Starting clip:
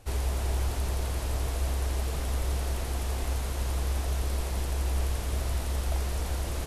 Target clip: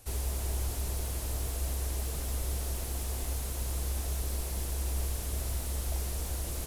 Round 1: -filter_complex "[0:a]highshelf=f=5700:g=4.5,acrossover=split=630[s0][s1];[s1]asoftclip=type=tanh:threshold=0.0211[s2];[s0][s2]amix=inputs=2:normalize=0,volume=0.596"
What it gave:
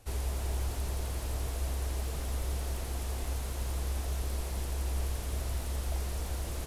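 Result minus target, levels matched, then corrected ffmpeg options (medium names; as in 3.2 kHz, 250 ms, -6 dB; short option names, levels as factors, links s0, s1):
8 kHz band -4.0 dB
-filter_complex "[0:a]highshelf=f=5700:g=16,acrossover=split=630[s0][s1];[s1]asoftclip=type=tanh:threshold=0.0211[s2];[s0][s2]amix=inputs=2:normalize=0,volume=0.596"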